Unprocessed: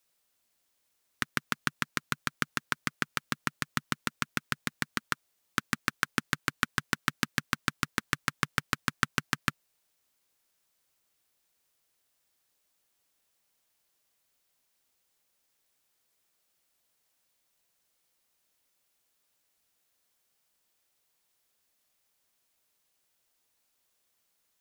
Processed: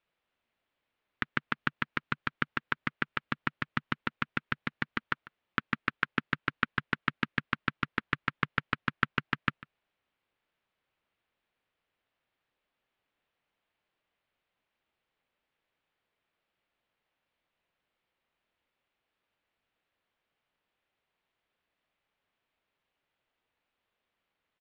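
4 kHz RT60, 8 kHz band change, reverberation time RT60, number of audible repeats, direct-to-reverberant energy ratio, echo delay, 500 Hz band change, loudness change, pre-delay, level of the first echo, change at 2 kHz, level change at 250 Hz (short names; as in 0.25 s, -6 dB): none, under -25 dB, none, 1, none, 0.147 s, 0.0 dB, -1.0 dB, none, -20.5 dB, 0.0 dB, 0.0 dB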